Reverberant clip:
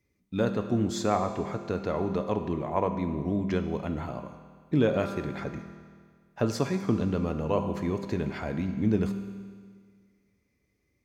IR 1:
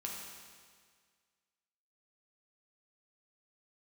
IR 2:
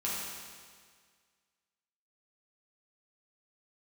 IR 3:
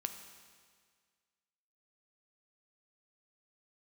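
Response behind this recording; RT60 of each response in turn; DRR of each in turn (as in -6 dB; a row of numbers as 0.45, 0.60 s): 3; 1.8, 1.8, 1.8 s; -2.5, -7.5, 6.0 dB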